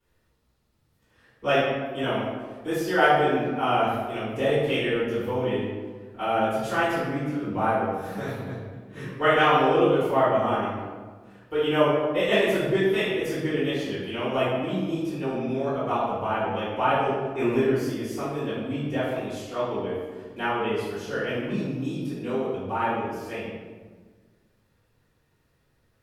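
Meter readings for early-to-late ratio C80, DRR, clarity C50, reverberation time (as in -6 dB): 2.0 dB, -15.0 dB, -1.0 dB, 1.5 s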